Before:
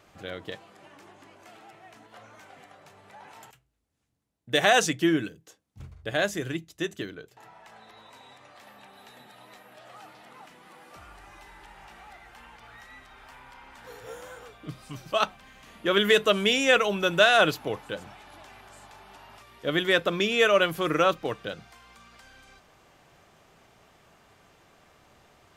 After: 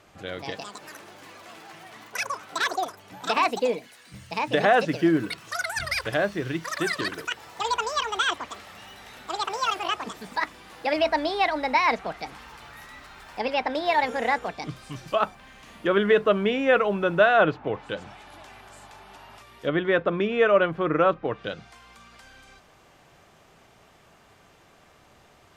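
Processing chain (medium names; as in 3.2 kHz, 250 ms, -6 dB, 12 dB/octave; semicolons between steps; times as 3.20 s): low-pass that closes with the level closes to 1.6 kHz, closed at -23.5 dBFS; ever faster or slower copies 268 ms, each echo +7 st, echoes 3; trim +2.5 dB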